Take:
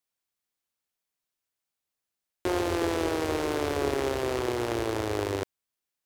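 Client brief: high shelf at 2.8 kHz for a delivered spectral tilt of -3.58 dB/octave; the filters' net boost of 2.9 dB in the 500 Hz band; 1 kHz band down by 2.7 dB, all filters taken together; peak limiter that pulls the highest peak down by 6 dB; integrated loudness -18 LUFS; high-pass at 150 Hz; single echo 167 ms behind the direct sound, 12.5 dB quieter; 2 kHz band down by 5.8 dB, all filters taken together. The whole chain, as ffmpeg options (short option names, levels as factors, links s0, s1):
-af "highpass=150,equalizer=f=500:t=o:g=5,equalizer=f=1000:t=o:g=-4,equalizer=f=2000:t=o:g=-3,highshelf=f=2800:g=-8.5,alimiter=limit=0.1:level=0:latency=1,aecho=1:1:167:0.237,volume=3.98"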